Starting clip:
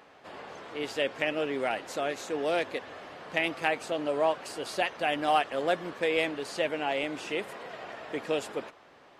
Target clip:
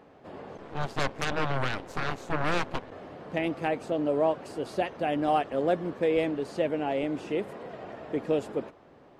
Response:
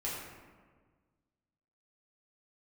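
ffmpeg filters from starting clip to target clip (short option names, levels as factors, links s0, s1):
-filter_complex "[0:a]tiltshelf=f=720:g=9,asplit=3[s0][s1][s2];[s0]afade=t=out:st=0.57:d=0.02[s3];[s1]aeval=exprs='0.178*(cos(1*acos(clip(val(0)/0.178,-1,1)))-cos(1*PI/2))+0.0501*(cos(3*acos(clip(val(0)/0.178,-1,1)))-cos(3*PI/2))+0.01*(cos(5*acos(clip(val(0)/0.178,-1,1)))-cos(5*PI/2))+0.0316*(cos(7*acos(clip(val(0)/0.178,-1,1)))-cos(7*PI/2))+0.0355*(cos(8*acos(clip(val(0)/0.178,-1,1)))-cos(8*PI/2))':c=same,afade=t=in:st=0.57:d=0.02,afade=t=out:st=2.9:d=0.02[s4];[s2]afade=t=in:st=2.9:d=0.02[s5];[s3][s4][s5]amix=inputs=3:normalize=0"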